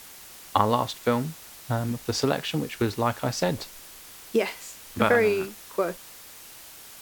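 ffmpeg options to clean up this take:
ffmpeg -i in.wav -af "afwtdn=0.0056" out.wav

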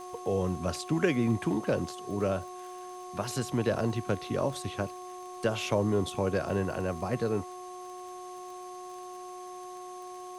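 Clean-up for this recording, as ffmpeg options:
ffmpeg -i in.wav -af "adeclick=threshold=4,bandreject=frequency=363.8:width_type=h:width=4,bandreject=frequency=727.6:width_type=h:width=4,bandreject=frequency=1091.4:width_type=h:width=4,bandreject=frequency=6300:width=30,afftdn=noise_reduction=30:noise_floor=-43" out.wav

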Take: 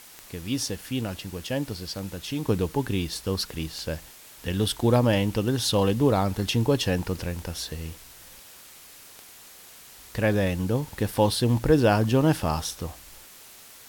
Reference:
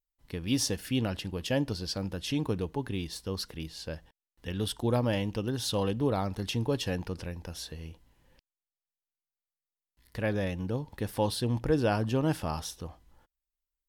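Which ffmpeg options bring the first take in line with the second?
ffmpeg -i in.wav -af "adeclick=threshold=4,afwtdn=0.0045,asetnsamples=nb_out_samples=441:pad=0,asendcmd='2.48 volume volume -7dB',volume=0dB" out.wav

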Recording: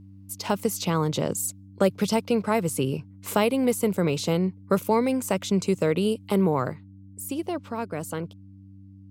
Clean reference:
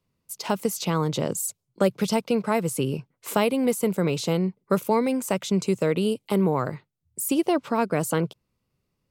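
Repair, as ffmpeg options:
ffmpeg -i in.wav -af "bandreject=frequency=97.1:width_type=h:width=4,bandreject=frequency=194.2:width_type=h:width=4,bandreject=frequency=291.3:width_type=h:width=4,asetnsamples=nb_out_samples=441:pad=0,asendcmd='6.73 volume volume 7.5dB',volume=0dB" out.wav

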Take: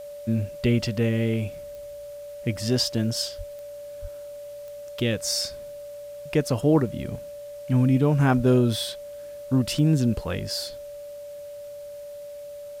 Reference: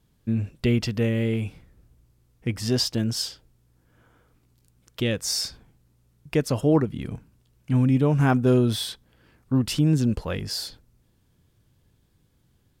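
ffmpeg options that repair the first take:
ffmpeg -i in.wav -filter_complex "[0:a]adeclick=threshold=4,bandreject=frequency=580:width=30,asplit=3[link_01][link_02][link_03];[link_01]afade=type=out:start_time=3.37:duration=0.02[link_04];[link_02]highpass=frequency=140:width=0.5412,highpass=frequency=140:width=1.3066,afade=type=in:start_time=3.37:duration=0.02,afade=type=out:start_time=3.49:duration=0.02[link_05];[link_03]afade=type=in:start_time=3.49:duration=0.02[link_06];[link_04][link_05][link_06]amix=inputs=3:normalize=0,asplit=3[link_07][link_08][link_09];[link_07]afade=type=out:start_time=4.01:duration=0.02[link_10];[link_08]highpass=frequency=140:width=0.5412,highpass=frequency=140:width=1.3066,afade=type=in:start_time=4.01:duration=0.02,afade=type=out:start_time=4.13:duration=0.02[link_11];[link_09]afade=type=in:start_time=4.13:duration=0.02[link_12];[link_10][link_11][link_12]amix=inputs=3:normalize=0,asplit=3[link_13][link_14][link_15];[link_13]afade=type=out:start_time=8.36:duration=0.02[link_16];[link_14]highpass=frequency=140:width=0.5412,highpass=frequency=140:width=1.3066,afade=type=in:start_time=8.36:duration=0.02,afade=type=out:start_time=8.48:duration=0.02[link_17];[link_15]afade=type=in:start_time=8.48:duration=0.02[link_18];[link_16][link_17][link_18]amix=inputs=3:normalize=0,agate=range=-21dB:threshold=-31dB" out.wav

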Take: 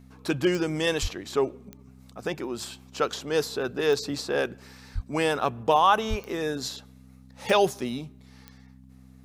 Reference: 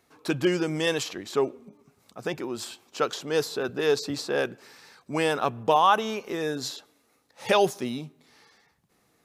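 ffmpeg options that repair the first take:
ffmpeg -i in.wav -filter_complex "[0:a]adeclick=threshold=4,bandreject=frequency=64.6:width_type=h:width=4,bandreject=frequency=129.2:width_type=h:width=4,bandreject=frequency=193.8:width_type=h:width=4,bandreject=frequency=258.4:width_type=h:width=4,asplit=3[link_01][link_02][link_03];[link_01]afade=type=out:start_time=1.01:duration=0.02[link_04];[link_02]highpass=frequency=140:width=0.5412,highpass=frequency=140:width=1.3066,afade=type=in:start_time=1.01:duration=0.02,afade=type=out:start_time=1.13:duration=0.02[link_05];[link_03]afade=type=in:start_time=1.13:duration=0.02[link_06];[link_04][link_05][link_06]amix=inputs=3:normalize=0,asplit=3[link_07][link_08][link_09];[link_07]afade=type=out:start_time=4.94:duration=0.02[link_10];[link_08]highpass=frequency=140:width=0.5412,highpass=frequency=140:width=1.3066,afade=type=in:start_time=4.94:duration=0.02,afade=type=out:start_time=5.06:duration=0.02[link_11];[link_09]afade=type=in:start_time=5.06:duration=0.02[link_12];[link_10][link_11][link_12]amix=inputs=3:normalize=0,asplit=3[link_13][link_14][link_15];[link_13]afade=type=out:start_time=6.09:duration=0.02[link_16];[link_14]highpass=frequency=140:width=0.5412,highpass=frequency=140:width=1.3066,afade=type=in:start_time=6.09:duration=0.02,afade=type=out:start_time=6.21:duration=0.02[link_17];[link_15]afade=type=in:start_time=6.21:duration=0.02[link_18];[link_16][link_17][link_18]amix=inputs=3:normalize=0" out.wav

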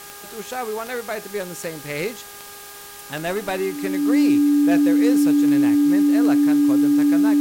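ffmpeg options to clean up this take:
ffmpeg -i in.wav -af "adeclick=threshold=4,bandreject=frequency=406.8:width_type=h:width=4,bandreject=frequency=813.6:width_type=h:width=4,bandreject=frequency=1220.4:width_type=h:width=4,bandreject=frequency=1627.2:width_type=h:width=4,bandreject=frequency=290:width=30,afwtdn=0.011" out.wav

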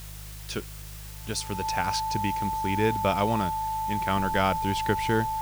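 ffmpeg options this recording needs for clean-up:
ffmpeg -i in.wav -af "bandreject=frequency=51.5:width_type=h:width=4,bandreject=frequency=103:width_type=h:width=4,bandreject=frequency=154.5:width_type=h:width=4,bandreject=frequency=880:width=30,afwtdn=0.005" out.wav

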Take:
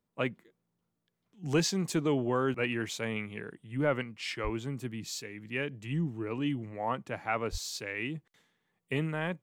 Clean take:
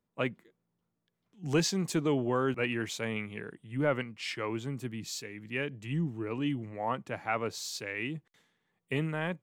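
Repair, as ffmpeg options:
ffmpeg -i in.wav -filter_complex "[0:a]asplit=3[link_01][link_02][link_03];[link_01]afade=type=out:start_time=4.43:duration=0.02[link_04];[link_02]highpass=frequency=140:width=0.5412,highpass=frequency=140:width=1.3066,afade=type=in:start_time=4.43:duration=0.02,afade=type=out:start_time=4.55:duration=0.02[link_05];[link_03]afade=type=in:start_time=4.55:duration=0.02[link_06];[link_04][link_05][link_06]amix=inputs=3:normalize=0,asplit=3[link_07][link_08][link_09];[link_07]afade=type=out:start_time=7.51:duration=0.02[link_10];[link_08]highpass=frequency=140:width=0.5412,highpass=frequency=140:width=1.3066,afade=type=in:start_time=7.51:duration=0.02,afade=type=out:start_time=7.63:duration=0.02[link_11];[link_09]afade=type=in:start_time=7.63:duration=0.02[link_12];[link_10][link_11][link_12]amix=inputs=3:normalize=0" out.wav

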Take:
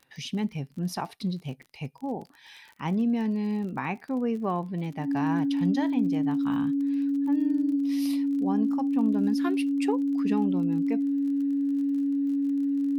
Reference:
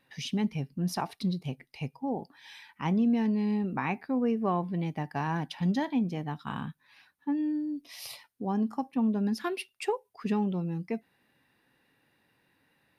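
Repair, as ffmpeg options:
ffmpeg -i in.wav -af "adeclick=threshold=4,bandreject=frequency=280:width=30" out.wav

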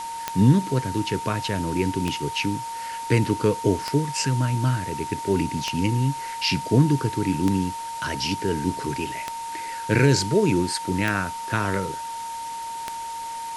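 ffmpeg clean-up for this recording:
ffmpeg -i in.wav -af "adeclick=threshold=4,bandreject=frequency=920:width=30,afwtdn=0.01" out.wav

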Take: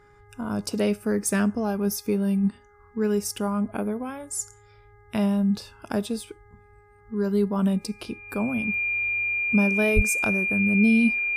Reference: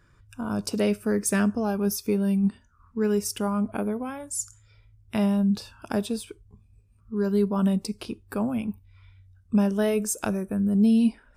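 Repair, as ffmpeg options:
ffmpeg -i in.wav -filter_complex "[0:a]bandreject=frequency=412.4:width_type=h:width=4,bandreject=frequency=824.8:width_type=h:width=4,bandreject=frequency=1237.2:width_type=h:width=4,bandreject=frequency=1649.6:width_type=h:width=4,bandreject=frequency=2062:width_type=h:width=4,bandreject=frequency=2400:width=30,asplit=3[link_01][link_02][link_03];[link_01]afade=type=out:start_time=9.95:duration=0.02[link_04];[link_02]highpass=frequency=140:width=0.5412,highpass=frequency=140:width=1.3066,afade=type=in:start_time=9.95:duration=0.02,afade=type=out:start_time=10.07:duration=0.02[link_05];[link_03]afade=type=in:start_time=10.07:duration=0.02[link_06];[link_04][link_05][link_06]amix=inputs=3:normalize=0" out.wav

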